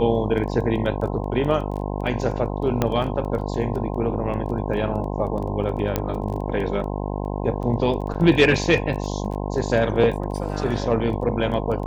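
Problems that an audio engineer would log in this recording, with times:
buzz 50 Hz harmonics 21 -27 dBFS
crackle 11/s -30 dBFS
2.82 pop -7 dBFS
5.96 pop -7 dBFS
8.14–8.15 gap 7.1 ms

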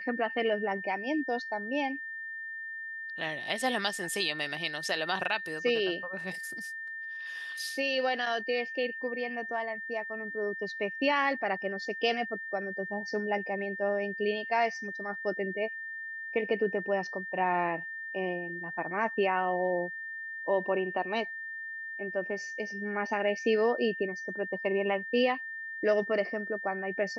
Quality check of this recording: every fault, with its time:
tone 1800 Hz -37 dBFS

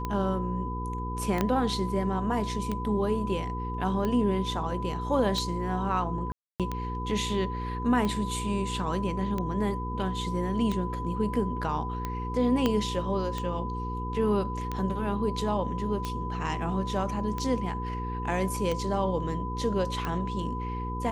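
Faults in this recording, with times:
hum 60 Hz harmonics 8 -34 dBFS
tick 45 rpm -18 dBFS
tone 1000 Hz -35 dBFS
1.41 pop -12 dBFS
6.32–6.6 gap 0.277 s
12.66 pop -12 dBFS

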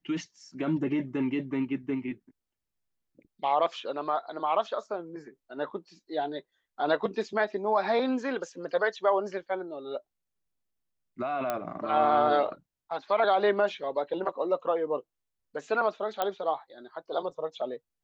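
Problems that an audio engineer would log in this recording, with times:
11.5 pop -16 dBFS
16.22 pop -14 dBFS

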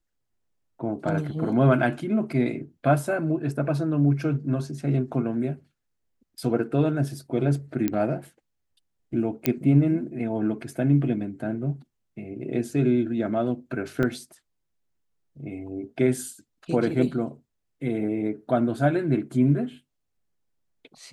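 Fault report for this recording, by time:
7.88 pop -12 dBFS
9.46 pop -6 dBFS
14.03 gap 2.3 ms

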